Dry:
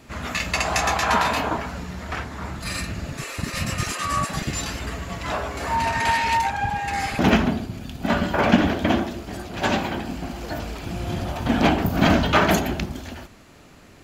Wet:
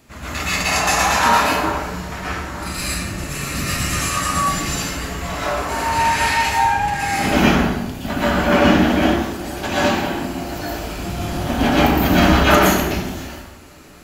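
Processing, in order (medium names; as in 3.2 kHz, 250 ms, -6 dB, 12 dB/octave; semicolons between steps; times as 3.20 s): treble shelf 7.7 kHz +9 dB; plate-style reverb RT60 0.94 s, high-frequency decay 0.75×, pre-delay 105 ms, DRR -9 dB; trim -4.5 dB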